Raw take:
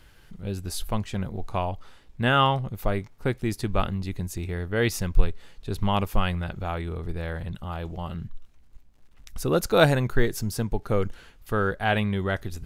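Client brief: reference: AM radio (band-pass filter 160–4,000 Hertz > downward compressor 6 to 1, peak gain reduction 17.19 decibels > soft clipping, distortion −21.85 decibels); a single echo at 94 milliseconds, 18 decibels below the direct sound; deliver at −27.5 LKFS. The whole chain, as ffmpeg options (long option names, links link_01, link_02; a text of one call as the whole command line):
ffmpeg -i in.wav -af "highpass=160,lowpass=4000,aecho=1:1:94:0.126,acompressor=threshold=-31dB:ratio=6,asoftclip=threshold=-22.5dB,volume=10.5dB" out.wav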